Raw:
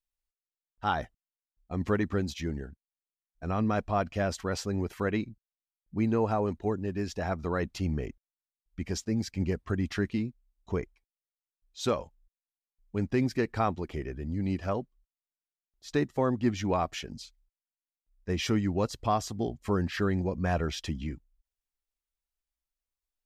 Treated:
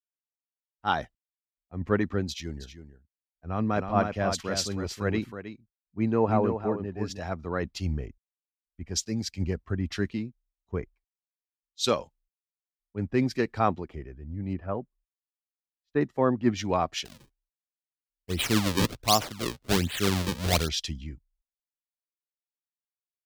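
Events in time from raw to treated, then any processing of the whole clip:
2.28–7.19 echo 0.318 s -5.5 dB
14.53–16.01 LPF 2200 Hz
17.05–20.69 decimation with a swept rate 36×, swing 160% 1.3 Hz
whole clip: dynamic EQ 4100 Hz, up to +5 dB, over -51 dBFS, Q 0.97; three-band expander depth 100%

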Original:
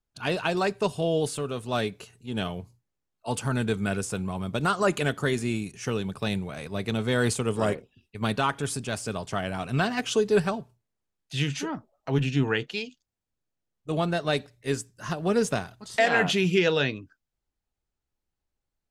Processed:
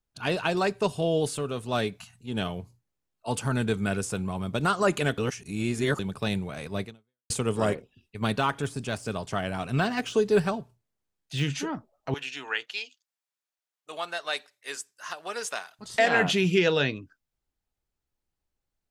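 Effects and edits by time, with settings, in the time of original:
1.98–2.2 spectral delete 240–650 Hz
5.18–5.99 reverse
6.83–7.3 fade out exponential
8.4–11.44 de-esser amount 85%
12.14–15.79 HPF 930 Hz

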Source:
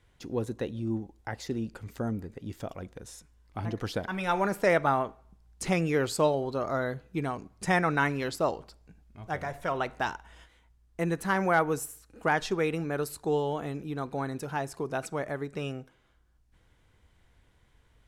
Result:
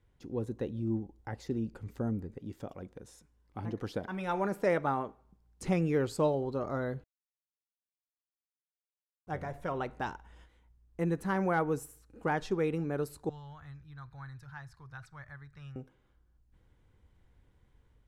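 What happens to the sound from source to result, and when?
2.39–5.63 low shelf 100 Hz -10 dB
7.04–9.27 mute
13.29–15.76 EQ curve 120 Hz 0 dB, 210 Hz -27 dB, 440 Hz -30 dB, 1100 Hz -7 dB, 1700 Hz 0 dB, 2700 Hz -11 dB, 4100 Hz -2 dB, 7700 Hz -13 dB
whole clip: tilt shelf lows +5 dB; notch 660 Hz, Q 12; AGC gain up to 3 dB; gain -8.5 dB

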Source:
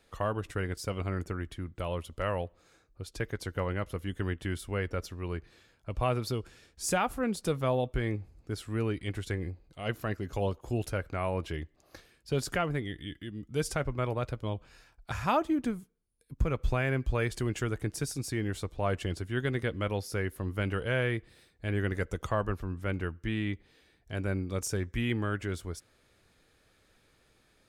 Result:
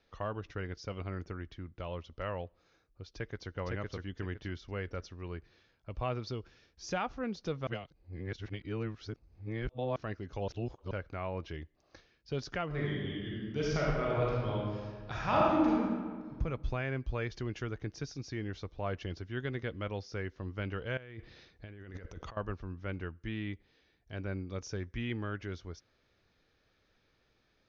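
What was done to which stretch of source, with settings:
3.12–3.54 echo throw 0.51 s, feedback 30%, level -1 dB
7.67–9.96 reverse
10.48–10.91 reverse
12.66–16.38 reverb throw, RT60 1.7 s, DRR -6 dB
20.97–22.37 negative-ratio compressor -41 dBFS
whole clip: steep low-pass 6300 Hz 96 dB/oct; gain -6 dB

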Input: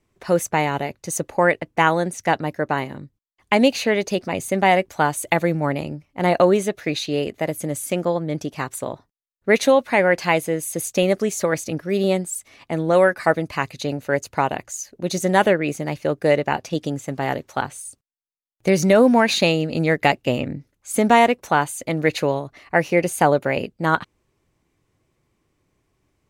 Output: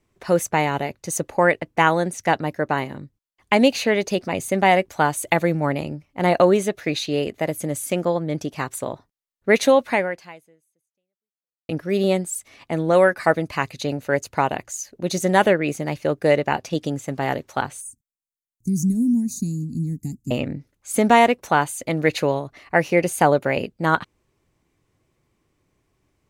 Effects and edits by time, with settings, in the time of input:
9.92–11.69 fade out exponential
17.81–20.31 elliptic band-stop 240–6900 Hz

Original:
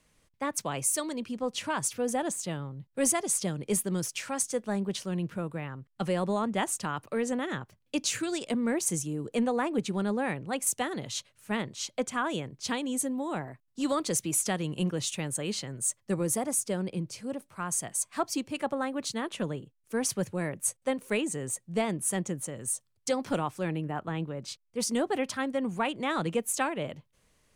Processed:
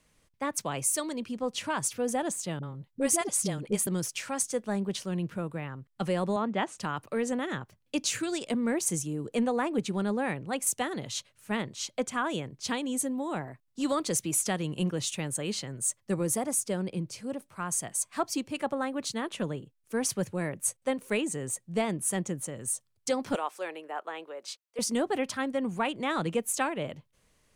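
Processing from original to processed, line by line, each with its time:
2.59–3.87 dispersion highs, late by 41 ms, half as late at 450 Hz
6.36–6.78 BPF 140–3800 Hz
23.35–24.79 HPF 430 Hz 24 dB/oct

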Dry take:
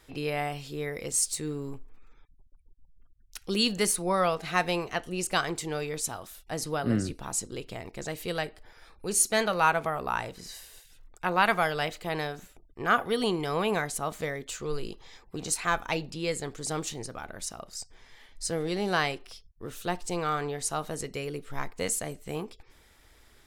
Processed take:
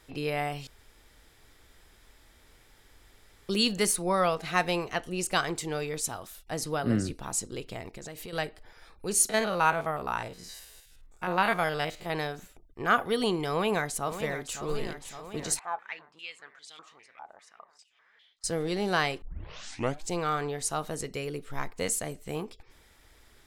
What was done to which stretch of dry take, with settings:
0.67–3.49 room tone
7.88–8.33 compressor 12:1, threshold -37 dBFS
9.29–12.1 stepped spectrum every 50 ms
13.5–14.59 echo throw 0.56 s, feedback 70%, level -10.5 dB
15.59–18.44 stepped band-pass 5 Hz 840–3400 Hz
19.22 tape start 0.90 s

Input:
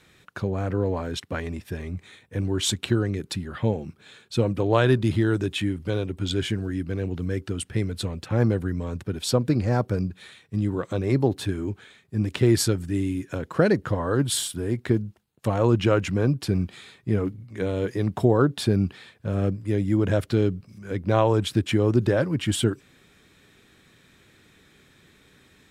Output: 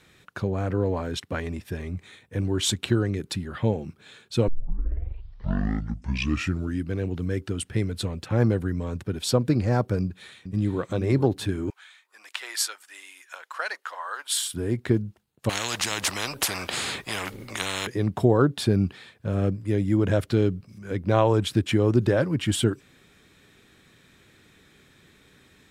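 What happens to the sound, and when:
4.48 tape start 2.39 s
10.01–10.81 echo throw 0.44 s, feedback 25%, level -10 dB
11.7–14.53 HPF 890 Hz 24 dB/oct
15.49–17.87 spectral compressor 10:1

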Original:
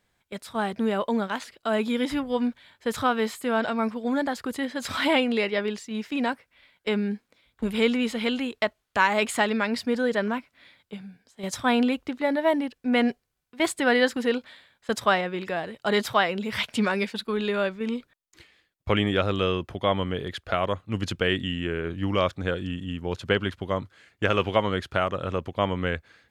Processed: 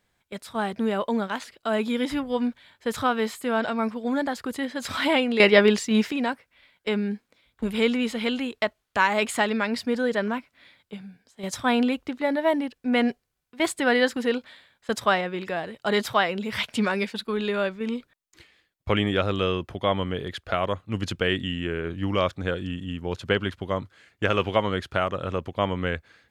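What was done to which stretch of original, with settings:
5.4–6.12 gain +10.5 dB

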